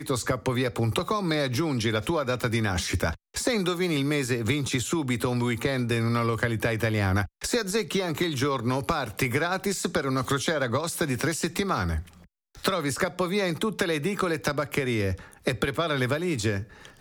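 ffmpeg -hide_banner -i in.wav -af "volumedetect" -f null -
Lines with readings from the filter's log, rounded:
mean_volume: -26.9 dB
max_volume: -11.6 dB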